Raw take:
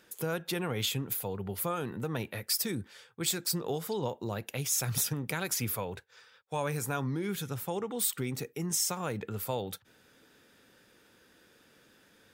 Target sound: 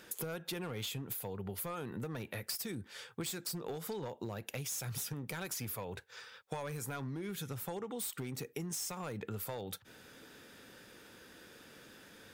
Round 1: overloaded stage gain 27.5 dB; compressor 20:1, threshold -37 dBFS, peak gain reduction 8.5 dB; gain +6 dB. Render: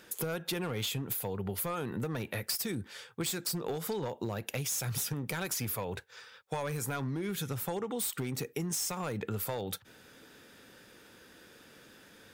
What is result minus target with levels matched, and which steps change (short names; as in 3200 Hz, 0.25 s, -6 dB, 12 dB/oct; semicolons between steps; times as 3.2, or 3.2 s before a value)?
compressor: peak gain reduction -5.5 dB
change: compressor 20:1, threshold -43 dBFS, peak gain reduction 14.5 dB